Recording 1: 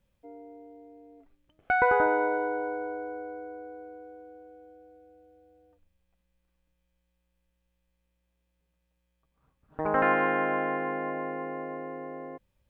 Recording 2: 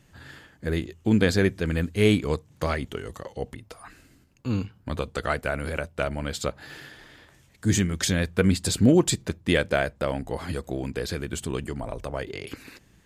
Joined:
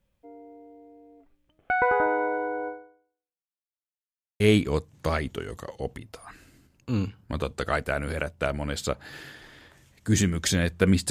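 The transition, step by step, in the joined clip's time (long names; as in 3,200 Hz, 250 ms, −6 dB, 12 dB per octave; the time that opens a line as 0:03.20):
recording 1
0:02.68–0:03.67: fade out exponential
0:03.67–0:04.40: silence
0:04.40: continue with recording 2 from 0:01.97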